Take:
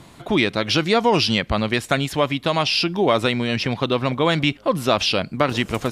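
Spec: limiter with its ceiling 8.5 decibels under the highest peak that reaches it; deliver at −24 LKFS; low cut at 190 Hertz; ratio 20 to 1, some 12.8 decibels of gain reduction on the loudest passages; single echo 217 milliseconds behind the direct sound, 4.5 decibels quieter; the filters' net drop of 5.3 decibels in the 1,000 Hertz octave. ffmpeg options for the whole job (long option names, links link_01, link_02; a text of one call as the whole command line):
ffmpeg -i in.wav -af "highpass=190,equalizer=frequency=1000:width_type=o:gain=-7,acompressor=threshold=-28dB:ratio=20,alimiter=limit=-22.5dB:level=0:latency=1,aecho=1:1:217:0.596,volume=9dB" out.wav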